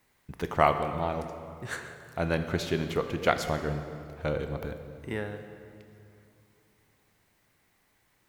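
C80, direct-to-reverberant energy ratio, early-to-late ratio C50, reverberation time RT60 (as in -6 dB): 9.5 dB, 8.0 dB, 9.0 dB, 2.6 s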